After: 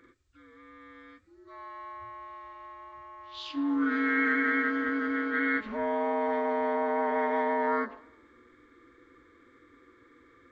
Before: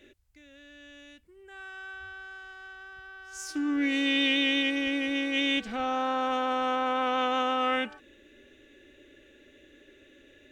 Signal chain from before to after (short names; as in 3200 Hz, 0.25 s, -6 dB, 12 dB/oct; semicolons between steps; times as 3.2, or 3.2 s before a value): inharmonic rescaling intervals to 81%; warbling echo 0.112 s, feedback 46%, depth 127 cents, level -23 dB